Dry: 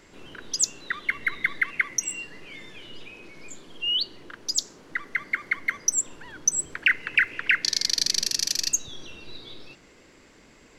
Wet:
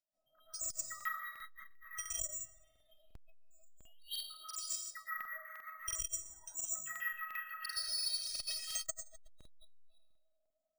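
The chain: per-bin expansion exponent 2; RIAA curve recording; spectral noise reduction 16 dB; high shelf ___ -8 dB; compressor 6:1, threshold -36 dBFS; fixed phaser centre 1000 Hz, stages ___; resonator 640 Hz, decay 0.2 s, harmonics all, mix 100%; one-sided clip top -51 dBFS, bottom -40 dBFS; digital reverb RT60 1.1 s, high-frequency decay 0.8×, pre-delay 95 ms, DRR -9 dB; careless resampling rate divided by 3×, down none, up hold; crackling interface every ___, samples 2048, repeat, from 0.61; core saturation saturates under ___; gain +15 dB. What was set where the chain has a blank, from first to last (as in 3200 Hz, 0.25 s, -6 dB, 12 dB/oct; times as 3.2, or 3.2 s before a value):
2100 Hz, 4, 0.35 s, 320 Hz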